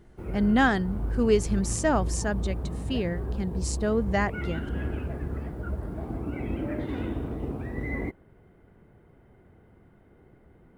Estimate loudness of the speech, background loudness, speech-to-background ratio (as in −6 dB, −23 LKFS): −27.5 LKFS, −33.5 LKFS, 6.0 dB